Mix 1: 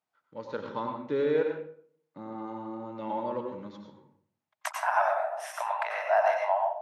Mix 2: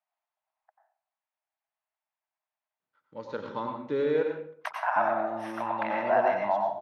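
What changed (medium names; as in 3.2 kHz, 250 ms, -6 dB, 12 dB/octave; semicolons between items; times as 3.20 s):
first voice: entry +2.80 s; second voice: add boxcar filter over 6 samples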